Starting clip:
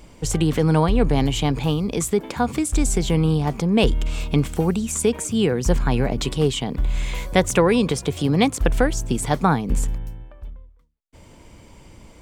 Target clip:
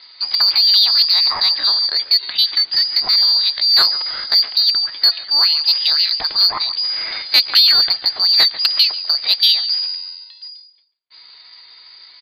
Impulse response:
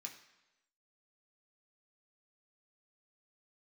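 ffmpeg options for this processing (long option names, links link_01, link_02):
-filter_complex "[0:a]highpass=frequency=98:poles=1,lowpass=frequency=3200:width_type=q:width=0.5098,lowpass=frequency=3200:width_type=q:width=0.6013,lowpass=frequency=3200:width_type=q:width=0.9,lowpass=frequency=3200:width_type=q:width=2.563,afreqshift=-3800,asetrate=57191,aresample=44100,atempo=0.771105,asplit=2[link_01][link_02];[link_02]adelay=142,lowpass=frequency=1800:poles=1,volume=-14dB,asplit=2[link_03][link_04];[link_04]adelay=142,lowpass=frequency=1800:poles=1,volume=0.38,asplit=2[link_05][link_06];[link_06]adelay=142,lowpass=frequency=1800:poles=1,volume=0.38,asplit=2[link_07][link_08];[link_08]adelay=142,lowpass=frequency=1800:poles=1,volume=0.38[link_09];[link_01][link_03][link_05][link_07][link_09]amix=inputs=5:normalize=0,acontrast=67"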